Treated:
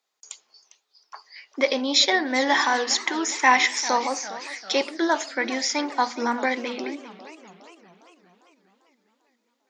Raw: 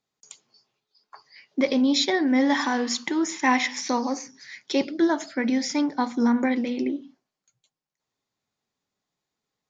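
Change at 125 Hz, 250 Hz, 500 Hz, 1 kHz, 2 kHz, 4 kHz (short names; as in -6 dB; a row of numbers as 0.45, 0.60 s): n/a, -7.0 dB, +1.5 dB, +5.0 dB, +5.5 dB, +5.5 dB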